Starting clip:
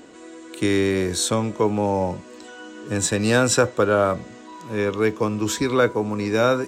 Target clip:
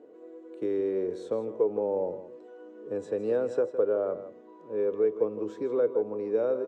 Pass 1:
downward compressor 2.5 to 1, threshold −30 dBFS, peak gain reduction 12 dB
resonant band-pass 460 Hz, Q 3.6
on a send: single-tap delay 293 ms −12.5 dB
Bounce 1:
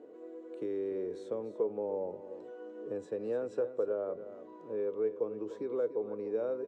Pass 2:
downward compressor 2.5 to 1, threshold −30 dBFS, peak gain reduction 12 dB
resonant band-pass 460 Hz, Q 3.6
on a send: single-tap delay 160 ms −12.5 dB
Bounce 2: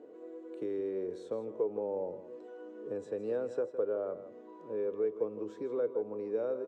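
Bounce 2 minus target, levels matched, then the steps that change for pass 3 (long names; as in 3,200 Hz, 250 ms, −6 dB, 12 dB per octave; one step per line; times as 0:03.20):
downward compressor: peak gain reduction +7 dB
change: downward compressor 2.5 to 1, threshold −18.5 dBFS, peak gain reduction 5 dB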